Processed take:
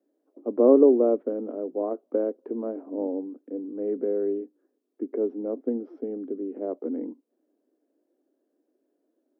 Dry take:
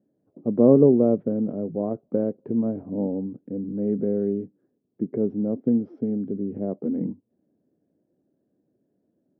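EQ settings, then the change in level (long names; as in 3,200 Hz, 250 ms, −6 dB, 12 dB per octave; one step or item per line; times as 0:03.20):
Butterworth high-pass 270 Hz 48 dB per octave
parametric band 1,200 Hz +4 dB 0.79 octaves
0.0 dB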